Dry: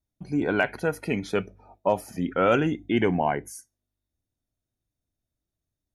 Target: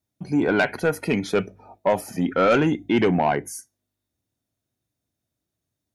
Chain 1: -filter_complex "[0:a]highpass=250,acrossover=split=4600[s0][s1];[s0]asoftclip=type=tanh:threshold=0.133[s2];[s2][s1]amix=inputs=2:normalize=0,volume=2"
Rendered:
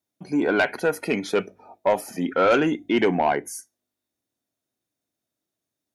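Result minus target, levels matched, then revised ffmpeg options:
125 Hz band -6.5 dB
-filter_complex "[0:a]highpass=100,acrossover=split=4600[s0][s1];[s0]asoftclip=type=tanh:threshold=0.133[s2];[s2][s1]amix=inputs=2:normalize=0,volume=2"

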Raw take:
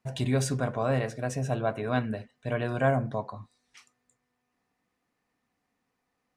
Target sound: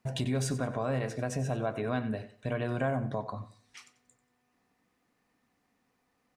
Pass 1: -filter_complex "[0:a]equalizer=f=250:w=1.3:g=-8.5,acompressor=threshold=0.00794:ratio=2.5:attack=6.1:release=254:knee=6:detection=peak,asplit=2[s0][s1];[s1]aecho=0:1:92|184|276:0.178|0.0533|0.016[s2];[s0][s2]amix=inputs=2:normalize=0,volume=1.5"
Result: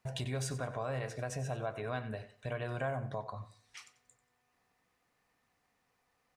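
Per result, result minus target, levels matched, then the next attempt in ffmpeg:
250 Hz band -5.0 dB; compression: peak gain reduction +3.5 dB
-filter_complex "[0:a]equalizer=f=250:w=1.3:g=2,acompressor=threshold=0.00794:ratio=2.5:attack=6.1:release=254:knee=6:detection=peak,asplit=2[s0][s1];[s1]aecho=0:1:92|184|276:0.178|0.0533|0.016[s2];[s0][s2]amix=inputs=2:normalize=0,volume=1.5"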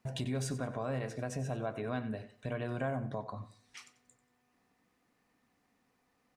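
compression: peak gain reduction +5 dB
-filter_complex "[0:a]equalizer=f=250:w=1.3:g=2,acompressor=threshold=0.02:ratio=2.5:attack=6.1:release=254:knee=6:detection=peak,asplit=2[s0][s1];[s1]aecho=0:1:92|184|276:0.178|0.0533|0.016[s2];[s0][s2]amix=inputs=2:normalize=0,volume=1.5"

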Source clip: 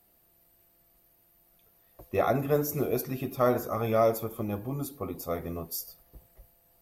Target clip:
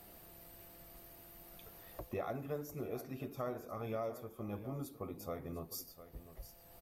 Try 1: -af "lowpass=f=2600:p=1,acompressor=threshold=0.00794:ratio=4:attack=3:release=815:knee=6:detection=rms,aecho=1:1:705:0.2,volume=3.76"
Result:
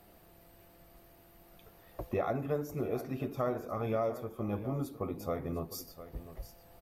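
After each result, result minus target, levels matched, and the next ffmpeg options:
compression: peak gain reduction -7.5 dB; 8 kHz band -7.5 dB
-af "lowpass=f=2600:p=1,acompressor=threshold=0.00251:ratio=4:attack=3:release=815:knee=6:detection=rms,aecho=1:1:705:0.2,volume=3.76"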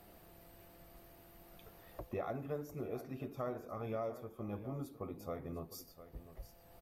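8 kHz band -7.0 dB
-af "lowpass=f=7200:p=1,acompressor=threshold=0.00251:ratio=4:attack=3:release=815:knee=6:detection=rms,aecho=1:1:705:0.2,volume=3.76"

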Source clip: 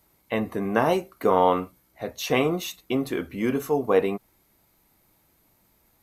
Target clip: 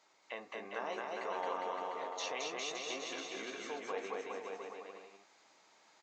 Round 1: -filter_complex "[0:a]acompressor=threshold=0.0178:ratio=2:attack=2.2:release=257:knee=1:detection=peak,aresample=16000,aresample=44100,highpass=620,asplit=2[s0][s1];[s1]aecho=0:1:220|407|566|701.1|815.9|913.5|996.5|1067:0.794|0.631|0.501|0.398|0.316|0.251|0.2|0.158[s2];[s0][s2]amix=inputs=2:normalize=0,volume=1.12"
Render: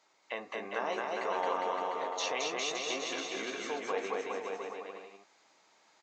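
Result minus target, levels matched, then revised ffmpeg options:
compression: peak gain reduction -6 dB
-filter_complex "[0:a]acompressor=threshold=0.00473:ratio=2:attack=2.2:release=257:knee=1:detection=peak,aresample=16000,aresample=44100,highpass=620,asplit=2[s0][s1];[s1]aecho=0:1:220|407|566|701.1|815.9|913.5|996.5|1067:0.794|0.631|0.501|0.398|0.316|0.251|0.2|0.158[s2];[s0][s2]amix=inputs=2:normalize=0,volume=1.12"

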